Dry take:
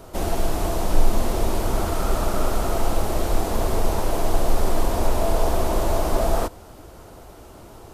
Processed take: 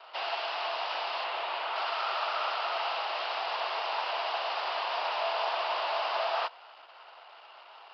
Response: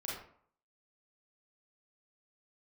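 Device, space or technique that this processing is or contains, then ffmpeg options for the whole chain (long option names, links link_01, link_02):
musical greeting card: -filter_complex "[0:a]asettb=1/sr,asplit=3[link_01][link_02][link_03];[link_01]atrim=end=1.244[link_04];[link_02]atrim=start=1.24:end=1.76,asetpts=PTS-STARTPTS,afade=type=in:duration=0.004:curve=qsin,afade=type=out:start_time=0.516:duration=0.004:curve=qsin,lowpass=3700[link_05];[link_03]atrim=start=1.756[link_06];[link_04][link_05]acrossfade=duration=0.004:curve1=hsin:curve2=qsin[link_07];[link_07][link_06]acrossfade=duration=0.004:curve1=qsin:curve2=hsin,aresample=11025,aresample=44100,highpass=frequency=800:width=0.5412,highpass=frequency=800:width=1.3066,equalizer=frequency=2800:width_type=o:width=0.34:gain=9,anlmdn=0.00158"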